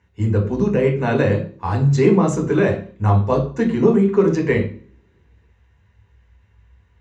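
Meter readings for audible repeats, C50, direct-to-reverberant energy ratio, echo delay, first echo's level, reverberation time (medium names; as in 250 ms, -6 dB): no echo, 9.0 dB, 0.5 dB, no echo, no echo, 0.45 s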